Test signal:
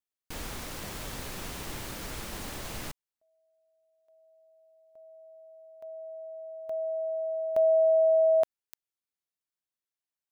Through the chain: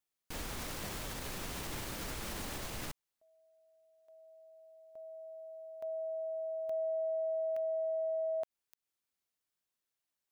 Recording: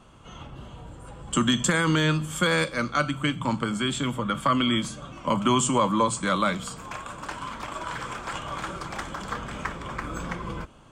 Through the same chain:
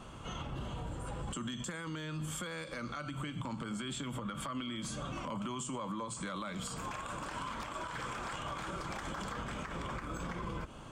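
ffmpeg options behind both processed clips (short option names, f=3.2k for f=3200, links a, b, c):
-af "acompressor=threshold=-34dB:ratio=6:attack=0.18:release=89:knee=6:detection=rms,alimiter=level_in=11dB:limit=-24dB:level=0:latency=1:release=165,volume=-11dB,volume=3.5dB"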